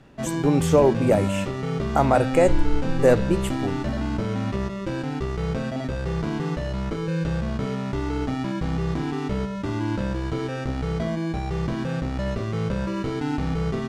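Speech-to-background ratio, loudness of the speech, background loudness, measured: 5.5 dB, −22.0 LKFS, −27.5 LKFS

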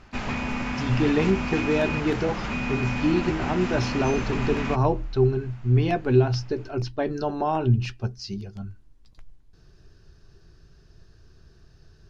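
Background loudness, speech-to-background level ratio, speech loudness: −29.5 LKFS, 4.0 dB, −25.5 LKFS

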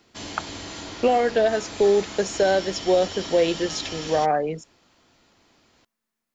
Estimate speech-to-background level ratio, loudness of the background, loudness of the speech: 12.0 dB, −34.5 LKFS, −22.5 LKFS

